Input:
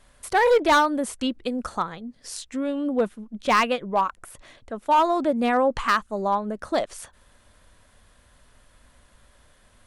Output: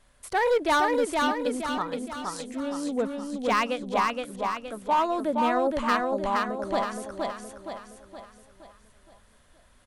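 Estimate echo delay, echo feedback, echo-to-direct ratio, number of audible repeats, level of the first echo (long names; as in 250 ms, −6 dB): 469 ms, 47%, −2.0 dB, 5, −3.0 dB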